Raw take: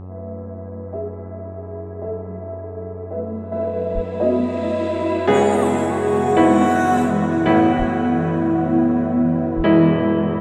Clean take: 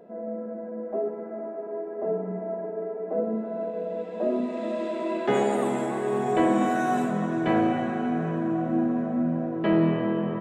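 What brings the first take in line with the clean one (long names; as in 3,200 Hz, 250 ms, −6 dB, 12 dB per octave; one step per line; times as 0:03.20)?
hum removal 92.7 Hz, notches 14
0:03.52: level correction −8 dB
0:03.94–0:04.06: high-pass filter 140 Hz 24 dB per octave
0:07.78–0:07.90: high-pass filter 140 Hz 24 dB per octave
0:09.56–0:09.68: high-pass filter 140 Hz 24 dB per octave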